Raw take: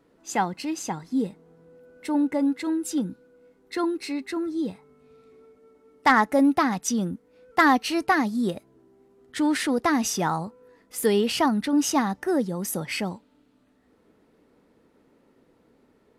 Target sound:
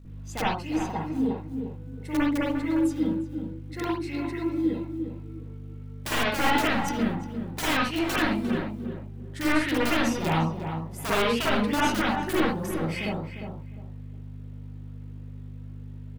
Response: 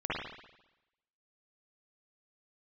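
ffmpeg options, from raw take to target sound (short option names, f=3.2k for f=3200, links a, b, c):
-filter_complex "[0:a]aeval=exprs='(mod(6.31*val(0)+1,2)-1)/6.31':c=same,aeval=exprs='val(0)+0.0158*(sin(2*PI*50*n/s)+sin(2*PI*2*50*n/s)/2+sin(2*PI*3*50*n/s)/3+sin(2*PI*4*50*n/s)/4+sin(2*PI*5*50*n/s)/5)':c=same,asplit=2[a][b];[b]adelay=352,lowpass=f=1.6k:p=1,volume=-7dB,asplit=2[c][d];[d]adelay=352,lowpass=f=1.6k:p=1,volume=0.24,asplit=2[e][f];[f]adelay=352,lowpass=f=1.6k:p=1,volume=0.24[g];[a][c][e][g]amix=inputs=4:normalize=0,acrusher=bits=7:mode=log:mix=0:aa=0.000001[h];[1:a]atrim=start_sample=2205,atrim=end_sample=6174[i];[h][i]afir=irnorm=-1:irlink=0,volume=-7.5dB"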